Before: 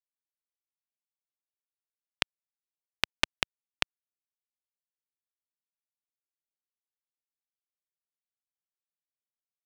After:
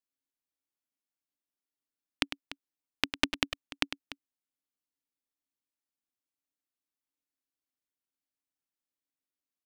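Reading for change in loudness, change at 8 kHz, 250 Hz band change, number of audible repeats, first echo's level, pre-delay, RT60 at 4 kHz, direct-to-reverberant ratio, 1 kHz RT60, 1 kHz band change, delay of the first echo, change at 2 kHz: -0.5 dB, -0.5 dB, +9.0 dB, 2, -11.0 dB, none, none, none, none, -0.5 dB, 0.102 s, -0.5 dB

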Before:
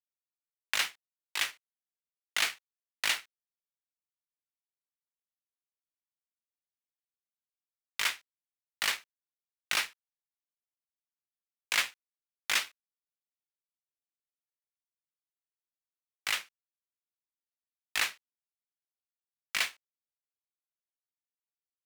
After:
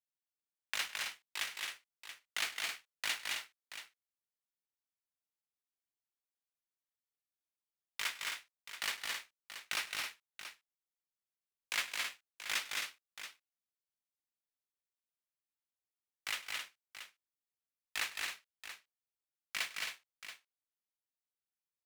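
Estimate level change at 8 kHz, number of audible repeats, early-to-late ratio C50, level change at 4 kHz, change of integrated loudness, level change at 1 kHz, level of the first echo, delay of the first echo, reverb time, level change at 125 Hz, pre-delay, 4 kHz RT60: -5.0 dB, 4, none, -5.0 dB, -7.5 dB, -5.0 dB, -19.0 dB, 0.101 s, none, n/a, none, none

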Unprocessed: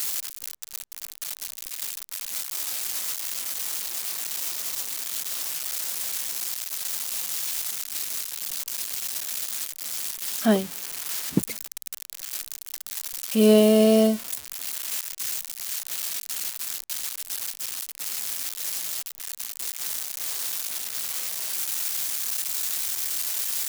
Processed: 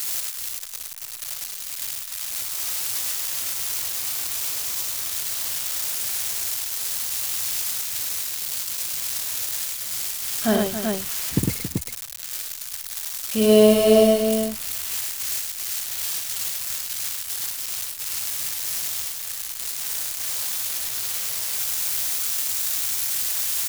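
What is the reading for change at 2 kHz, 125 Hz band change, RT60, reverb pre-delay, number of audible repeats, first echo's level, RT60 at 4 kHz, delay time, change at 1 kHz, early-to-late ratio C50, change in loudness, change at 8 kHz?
+3.5 dB, +3.5 dB, none, none, 4, -6.0 dB, none, 59 ms, +4.0 dB, none, +3.0 dB, +3.5 dB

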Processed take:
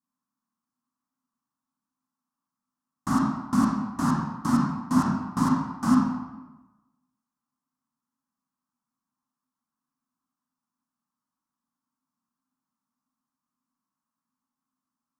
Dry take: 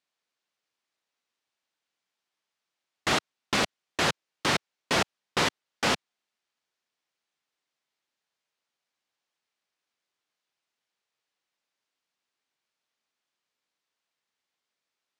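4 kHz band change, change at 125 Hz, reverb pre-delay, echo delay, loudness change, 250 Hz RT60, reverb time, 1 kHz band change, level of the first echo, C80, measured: -16.5 dB, +9.0 dB, 28 ms, none, +3.0 dB, 1.2 s, 1.1 s, +2.5 dB, none, 3.0 dB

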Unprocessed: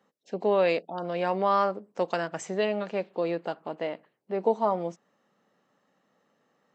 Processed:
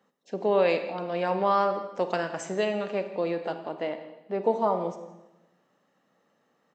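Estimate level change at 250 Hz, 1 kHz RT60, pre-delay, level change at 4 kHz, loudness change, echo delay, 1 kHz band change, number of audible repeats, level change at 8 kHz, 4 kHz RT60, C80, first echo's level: +0.5 dB, 0.95 s, 29 ms, +0.5 dB, +0.5 dB, 0.166 s, +0.5 dB, 1, +0.5 dB, 0.95 s, 11.0 dB, -18.5 dB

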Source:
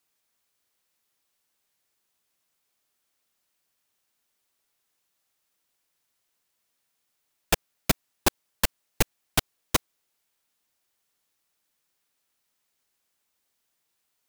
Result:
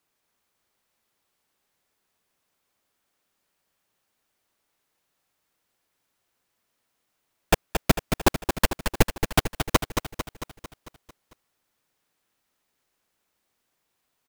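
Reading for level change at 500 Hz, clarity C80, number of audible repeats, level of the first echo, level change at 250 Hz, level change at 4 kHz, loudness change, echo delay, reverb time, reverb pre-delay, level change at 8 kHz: +6.5 dB, none, 6, -7.0 dB, +6.5 dB, +0.5 dB, +2.0 dB, 0.224 s, none, none, -1.0 dB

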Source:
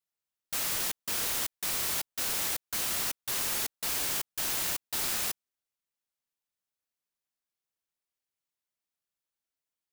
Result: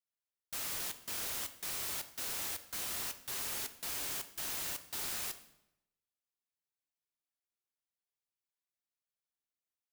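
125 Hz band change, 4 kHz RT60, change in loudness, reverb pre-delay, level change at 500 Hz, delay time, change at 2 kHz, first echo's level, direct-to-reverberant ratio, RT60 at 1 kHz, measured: -7.0 dB, 0.70 s, -7.5 dB, 3 ms, -7.5 dB, none, -7.5 dB, none, 9.0 dB, 0.85 s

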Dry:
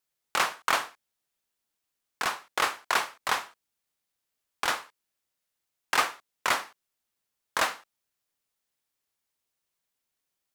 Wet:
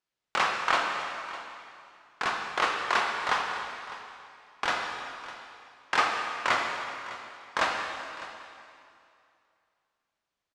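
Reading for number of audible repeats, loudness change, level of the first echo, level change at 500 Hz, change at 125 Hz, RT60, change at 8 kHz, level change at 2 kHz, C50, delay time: 1, -0.5 dB, -16.5 dB, +2.0 dB, +2.5 dB, 2.5 s, -7.0 dB, +1.5 dB, 2.5 dB, 0.605 s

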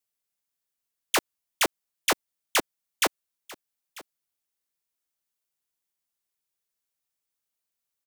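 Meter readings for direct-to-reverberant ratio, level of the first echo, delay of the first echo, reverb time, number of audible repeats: none, -20.5 dB, 0.944 s, none, 1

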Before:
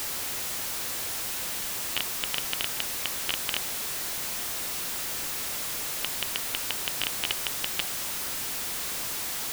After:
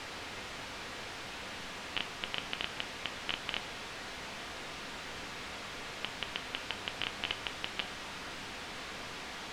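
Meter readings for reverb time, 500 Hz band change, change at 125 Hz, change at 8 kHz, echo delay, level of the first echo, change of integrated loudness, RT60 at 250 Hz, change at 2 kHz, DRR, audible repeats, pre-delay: 0.45 s, -3.0 dB, -3.5 dB, -19.5 dB, none, none, -10.5 dB, 0.75 s, -4.0 dB, 10.0 dB, none, 4 ms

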